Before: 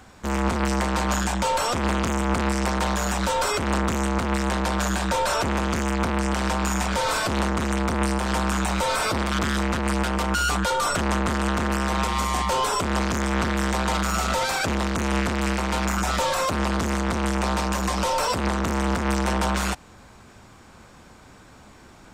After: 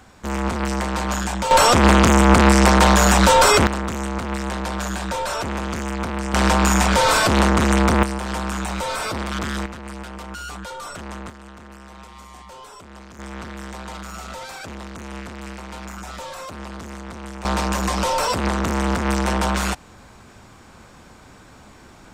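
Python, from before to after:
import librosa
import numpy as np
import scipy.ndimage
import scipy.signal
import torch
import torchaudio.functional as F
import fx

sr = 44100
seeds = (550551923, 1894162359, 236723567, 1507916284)

y = fx.gain(x, sr, db=fx.steps((0.0, 0.0), (1.51, 10.5), (3.67, -2.0), (6.34, 7.5), (8.03, -2.0), (9.66, -10.5), (11.3, -18.0), (13.19, -10.5), (17.45, 2.5)))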